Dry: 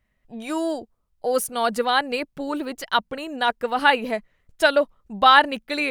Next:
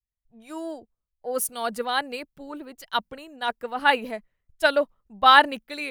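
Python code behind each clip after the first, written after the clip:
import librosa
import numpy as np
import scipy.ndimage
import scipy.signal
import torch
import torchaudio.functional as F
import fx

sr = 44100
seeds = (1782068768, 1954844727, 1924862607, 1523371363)

y = fx.high_shelf(x, sr, hz=12000.0, db=9.0)
y = fx.band_widen(y, sr, depth_pct=70)
y = y * librosa.db_to_amplitude(-5.5)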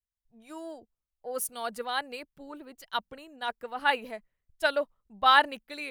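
y = fx.dynamic_eq(x, sr, hz=240.0, q=0.87, threshold_db=-38.0, ratio=4.0, max_db=-4)
y = y * librosa.db_to_amplitude(-5.5)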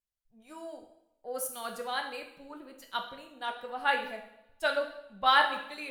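y = fx.rev_double_slope(x, sr, seeds[0], early_s=0.72, late_s=1.8, knee_db=-24, drr_db=2.5)
y = fx.wow_flutter(y, sr, seeds[1], rate_hz=2.1, depth_cents=23.0)
y = y * librosa.db_to_amplitude(-4.0)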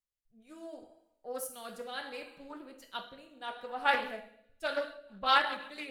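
y = fx.rotary_switch(x, sr, hz=0.7, then_hz=6.7, switch_at_s=4.52)
y = fx.doppler_dist(y, sr, depth_ms=0.18)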